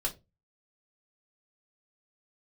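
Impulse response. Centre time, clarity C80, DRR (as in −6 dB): 10 ms, 24.5 dB, −1.0 dB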